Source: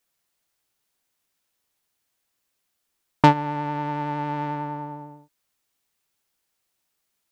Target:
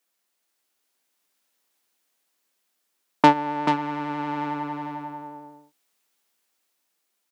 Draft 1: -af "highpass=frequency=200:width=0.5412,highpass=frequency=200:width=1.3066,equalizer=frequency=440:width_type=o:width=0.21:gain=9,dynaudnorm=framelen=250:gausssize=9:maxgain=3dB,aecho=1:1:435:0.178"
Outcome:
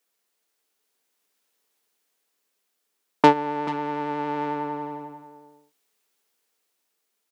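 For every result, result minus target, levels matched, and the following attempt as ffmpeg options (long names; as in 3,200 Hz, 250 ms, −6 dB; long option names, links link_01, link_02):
echo-to-direct −8.5 dB; 500 Hz band +4.0 dB
-af "highpass=frequency=200:width=0.5412,highpass=frequency=200:width=1.3066,equalizer=frequency=440:width_type=o:width=0.21:gain=9,dynaudnorm=framelen=250:gausssize=9:maxgain=3dB,aecho=1:1:435:0.473"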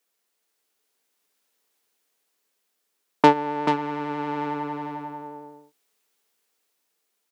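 500 Hz band +4.0 dB
-af "highpass=frequency=200:width=0.5412,highpass=frequency=200:width=1.3066,dynaudnorm=framelen=250:gausssize=9:maxgain=3dB,aecho=1:1:435:0.473"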